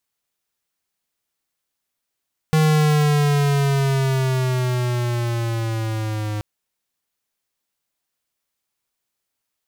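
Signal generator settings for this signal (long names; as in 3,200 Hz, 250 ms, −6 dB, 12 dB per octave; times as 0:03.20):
pitch glide with a swell square, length 3.88 s, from 157 Hz, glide −7 semitones, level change −10 dB, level −15 dB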